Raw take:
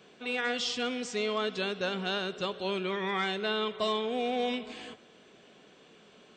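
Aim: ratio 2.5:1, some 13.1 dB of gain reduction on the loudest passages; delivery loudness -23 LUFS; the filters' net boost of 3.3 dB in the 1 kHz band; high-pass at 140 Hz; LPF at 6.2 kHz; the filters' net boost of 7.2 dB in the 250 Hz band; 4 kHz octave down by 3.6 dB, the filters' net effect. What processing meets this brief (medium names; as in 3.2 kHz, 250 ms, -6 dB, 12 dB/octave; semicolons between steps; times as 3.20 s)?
high-pass 140 Hz; low-pass 6.2 kHz; peaking EQ 250 Hz +9 dB; peaking EQ 1 kHz +4 dB; peaking EQ 4 kHz -4.5 dB; compression 2.5:1, threshold -44 dBFS; trim +18.5 dB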